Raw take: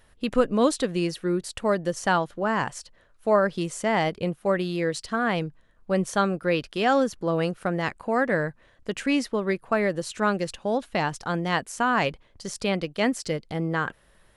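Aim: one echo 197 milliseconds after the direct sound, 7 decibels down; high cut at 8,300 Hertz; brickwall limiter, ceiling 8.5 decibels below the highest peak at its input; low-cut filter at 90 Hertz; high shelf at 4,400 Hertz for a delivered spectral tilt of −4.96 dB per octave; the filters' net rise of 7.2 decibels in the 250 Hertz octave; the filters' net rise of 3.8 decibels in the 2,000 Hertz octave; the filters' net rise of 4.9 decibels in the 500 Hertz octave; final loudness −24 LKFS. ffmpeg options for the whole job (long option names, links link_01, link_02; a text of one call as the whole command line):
ffmpeg -i in.wav -af "highpass=90,lowpass=8300,equalizer=frequency=250:width_type=o:gain=8.5,equalizer=frequency=500:width_type=o:gain=3.5,equalizer=frequency=2000:width_type=o:gain=3.5,highshelf=frequency=4400:gain=6,alimiter=limit=-11.5dB:level=0:latency=1,aecho=1:1:197:0.447,volume=-1.5dB" out.wav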